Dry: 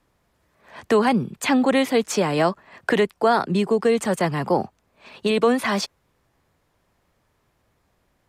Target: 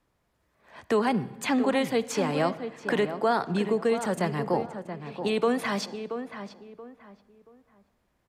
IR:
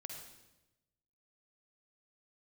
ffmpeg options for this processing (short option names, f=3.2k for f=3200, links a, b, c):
-filter_complex "[0:a]asplit=2[a][b];[b]adelay=679,lowpass=f=1.9k:p=1,volume=-9dB,asplit=2[c][d];[d]adelay=679,lowpass=f=1.9k:p=1,volume=0.29,asplit=2[e][f];[f]adelay=679,lowpass=f=1.9k:p=1,volume=0.29[g];[a][c][e][g]amix=inputs=4:normalize=0,asplit=2[h][i];[1:a]atrim=start_sample=2205,highshelf=f=6.4k:g=-11[j];[i][j]afir=irnorm=-1:irlink=0,volume=-7dB[k];[h][k]amix=inputs=2:normalize=0,volume=-8dB"